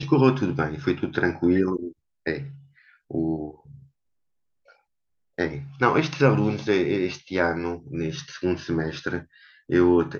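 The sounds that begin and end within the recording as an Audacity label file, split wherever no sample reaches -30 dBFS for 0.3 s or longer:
2.260000	2.430000	sound
3.110000	3.480000	sound
5.390000	9.200000	sound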